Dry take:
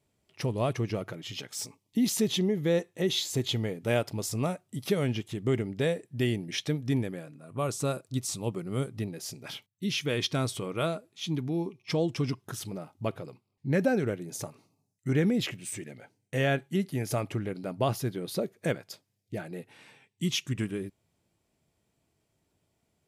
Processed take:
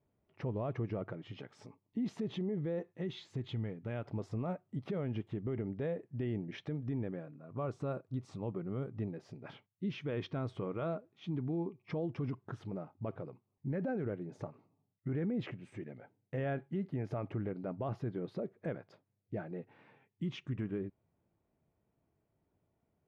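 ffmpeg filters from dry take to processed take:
ffmpeg -i in.wav -filter_complex "[0:a]asettb=1/sr,asplit=3[link_01][link_02][link_03];[link_01]atrim=end=2.924[link_04];[link_02]atrim=start=2.92:end=4.06,asetpts=PTS-STARTPTS,afade=type=in:duration=0.004:curve=qsin,afade=type=out:start_time=1.136:duration=0.004:curve=qsin,equalizer=frequency=540:width=0.64:gain=-8[link_05];[link_03]atrim=start=4.056[link_06];[link_04][link_05]acrossfade=duration=0.004:curve1=hsin:curve2=qsin[link_07];[link_07][link_06]acrossfade=duration=0.004:curve1=qsin:curve2=hsin,lowpass=1400,alimiter=level_in=2dB:limit=-24dB:level=0:latency=1:release=42,volume=-2dB,volume=-3dB" out.wav

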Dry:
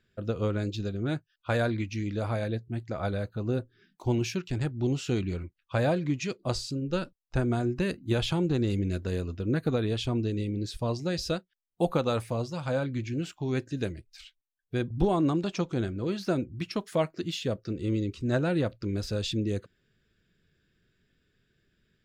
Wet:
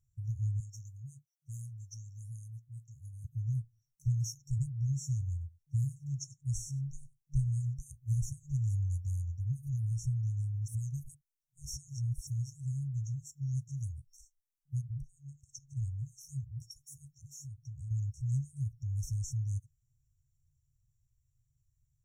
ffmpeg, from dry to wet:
ffmpeg -i in.wav -filter_complex "[0:a]asettb=1/sr,asplit=3[link_01][link_02][link_03];[link_01]atrim=end=0.604[link_04];[link_02]atrim=start=0.6:end=3.25,asetpts=PTS-STARTPTS,afade=type=in:duration=0.004:curve=qsin,afade=type=out:start_time=2.646:duration=0.004:curve=qsin,highpass=frequency=390:poles=1[link_05];[link_03]atrim=start=3.246[link_06];[link_04][link_05]acrossfade=duration=0.004:curve1=hsin:curve2=qsin[link_07];[link_07][link_06]acrossfade=duration=0.004:curve1=qsin:curve2=hsin,asettb=1/sr,asplit=3[link_08][link_09][link_10];[link_08]atrim=end=4.754[link_11];[link_09]atrim=start=4.75:end=7.74,asetpts=PTS-STARTPTS,afade=type=in:duration=0.004:curve=qsin,afade=type=out:start_time=2.986:duration=0.004:curve=qsin,aecho=1:1:97:0.0841,atrim=end_sample=131859[link_12];[link_10]atrim=start=7.736[link_13];[link_11][link_12]acrossfade=duration=0.004:curve1=hsin:curve2=qsin[link_14];[link_14][link_13]acrossfade=duration=0.004:curve1=qsin:curve2=hsin,asplit=3[link_15][link_16][link_17];[link_15]afade=type=out:start_time=14.8:duration=0.02[link_18];[link_16]acompressor=threshold=-33dB:ratio=16:attack=3.2:release=140:knee=1:detection=peak,afade=type=in:start_time=14.8:duration=0.02,afade=type=out:start_time=15.76:duration=0.02[link_19];[link_17]afade=type=in:start_time=15.76:duration=0.02[link_20];[link_18][link_19][link_20]amix=inputs=3:normalize=0,asettb=1/sr,asplit=3[link_21][link_22][link_23];[link_21]atrim=end=17.244[link_24];[link_22]atrim=start=17.24:end=17.91,asetpts=PTS-STARTPTS,afade=type=in:duration=0.004:curve=qsin,afade=type=out:start_time=0.666:duration=0.004:curve=qsin,acompressor=threshold=-33dB:ratio=10:attack=3.2:release=140:knee=1:detection=peak[link_25];[link_23]atrim=start=17.906[link_26];[link_24][link_25]acrossfade=duration=0.004:curve1=hsin:curve2=qsin[link_27];[link_27][link_26]acrossfade=duration=0.004:curve1=qsin:curve2=hsin,asplit=3[link_28][link_29][link_30];[link_28]atrim=end=10.682[link_31];[link_29]atrim=start=10.678:end=12.272,asetpts=PTS-STARTPTS,areverse[link_32];[link_30]atrim=start=12.268[link_33];[link_31][link_32]acrossfade=duration=0.004:curve1=hsin:curve2=hsin[link_34];[link_34][link_33]acrossfade=duration=0.004:curve1=hsin:curve2=hsin,afftfilt=real='re*(1-between(b*sr/4096,150,5500))':imag='im*(1-between(b*sr/4096,150,5500))':win_size=4096:overlap=0.75" out.wav

